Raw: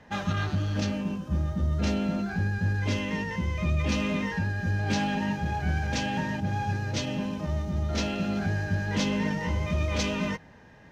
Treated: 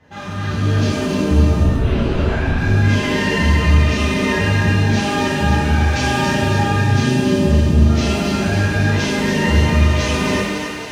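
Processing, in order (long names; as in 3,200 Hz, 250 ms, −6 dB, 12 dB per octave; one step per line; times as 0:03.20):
0:06.82–0:07.80: octave-band graphic EQ 125/250/500 Hz +6/+8/−11 dB
brickwall limiter −24 dBFS, peak gain reduction 10 dB
automatic gain control gain up to 9.5 dB
feedback echo with a high-pass in the loop 275 ms, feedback 59%, high-pass 450 Hz, level −5 dB
0:01.63–0:02.58: linear-prediction vocoder at 8 kHz whisper
reverb with rising layers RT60 1 s, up +7 semitones, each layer −8 dB, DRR −8 dB
level −4.5 dB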